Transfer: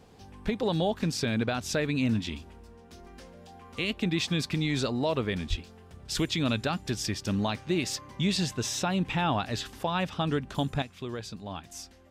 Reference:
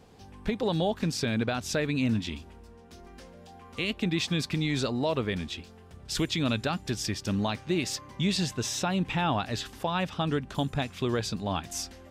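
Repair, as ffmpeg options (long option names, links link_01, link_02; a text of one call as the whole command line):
ffmpeg -i in.wav -filter_complex "[0:a]asplit=3[link_01][link_02][link_03];[link_01]afade=type=out:start_time=5.49:duration=0.02[link_04];[link_02]highpass=frequency=140:width=0.5412,highpass=frequency=140:width=1.3066,afade=type=in:start_time=5.49:duration=0.02,afade=type=out:start_time=5.61:duration=0.02[link_05];[link_03]afade=type=in:start_time=5.61:duration=0.02[link_06];[link_04][link_05][link_06]amix=inputs=3:normalize=0,asetnsamples=nb_out_samples=441:pad=0,asendcmd='10.82 volume volume 8dB',volume=0dB" out.wav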